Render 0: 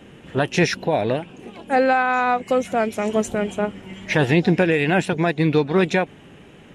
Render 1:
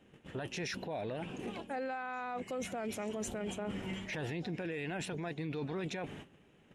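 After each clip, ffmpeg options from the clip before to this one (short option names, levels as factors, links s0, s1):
-af "agate=range=0.141:threshold=0.00891:ratio=16:detection=peak,areverse,acompressor=threshold=0.0562:ratio=10,areverse,alimiter=level_in=1.88:limit=0.0631:level=0:latency=1:release=11,volume=0.531,volume=0.841"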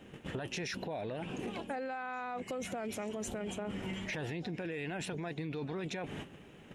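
-af "acompressor=threshold=0.00501:ratio=6,volume=2.99"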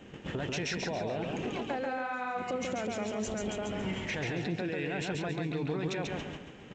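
-af "aecho=1:1:139|278|417|556|695:0.708|0.248|0.0867|0.0304|0.0106,volume=1.41" -ar 16000 -c:a g722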